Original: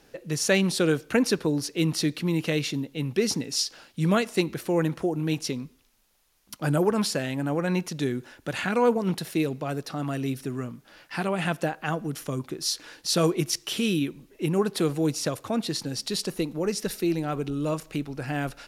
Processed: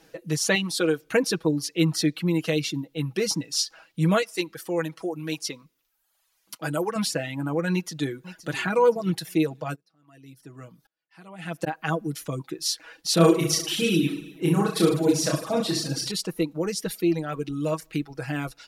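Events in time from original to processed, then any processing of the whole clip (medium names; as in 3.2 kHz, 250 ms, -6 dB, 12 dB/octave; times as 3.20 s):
0.55–1.02 s: bass shelf 180 Hz -11 dB
4.22–6.96 s: bass shelf 330 Hz -11 dB
7.72–8.48 s: echo throw 520 ms, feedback 50%, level -13 dB
9.74–11.66 s: sawtooth tremolo in dB swelling 0.53 Hz -> 1.6 Hz, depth 34 dB
13.14–16.11 s: reverse bouncing-ball echo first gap 30 ms, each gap 1.15×, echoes 8, each echo -2 dB
whole clip: reverb removal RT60 0.93 s; bass shelf 67 Hz -9 dB; comb 6.2 ms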